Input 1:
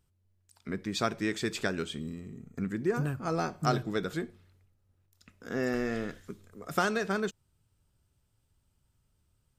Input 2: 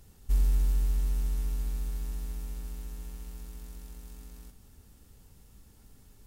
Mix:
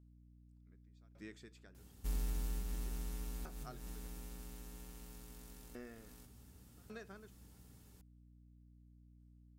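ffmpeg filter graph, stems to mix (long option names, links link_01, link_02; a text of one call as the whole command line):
ffmpeg -i stem1.wav -i stem2.wav -filter_complex "[0:a]aeval=exprs='val(0)*pow(10,-34*if(lt(mod(0.87*n/s,1),2*abs(0.87)/1000),1-mod(0.87*n/s,1)/(2*abs(0.87)/1000),(mod(0.87*n/s,1)-2*abs(0.87)/1000)/(1-2*abs(0.87)/1000))/20)':channel_layout=same,volume=-17dB,asplit=2[link_01][link_02];[1:a]highpass=78,adelay=1750,volume=-3.5dB[link_03];[link_02]apad=whole_len=353279[link_04];[link_03][link_04]sidechaincompress=threshold=-54dB:ratio=8:attack=5:release=194[link_05];[link_01][link_05]amix=inputs=2:normalize=0,aeval=exprs='val(0)+0.000891*(sin(2*PI*60*n/s)+sin(2*PI*2*60*n/s)/2+sin(2*PI*3*60*n/s)/3+sin(2*PI*4*60*n/s)/4+sin(2*PI*5*60*n/s)/5)':channel_layout=same" out.wav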